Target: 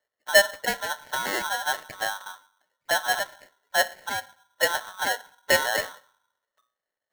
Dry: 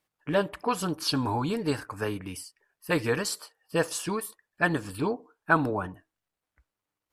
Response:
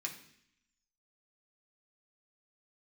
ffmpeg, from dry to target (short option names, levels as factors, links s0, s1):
-filter_complex "[0:a]lowpass=f=640:t=q:w=4.9,bandreject=f=60:t=h:w=6,bandreject=f=120:t=h:w=6,bandreject=f=180:t=h:w=6,asplit=2[s0][s1];[1:a]atrim=start_sample=2205[s2];[s1][s2]afir=irnorm=-1:irlink=0,volume=0.251[s3];[s0][s3]amix=inputs=2:normalize=0,aeval=exprs='val(0)*sgn(sin(2*PI*1200*n/s))':c=same,volume=0.668"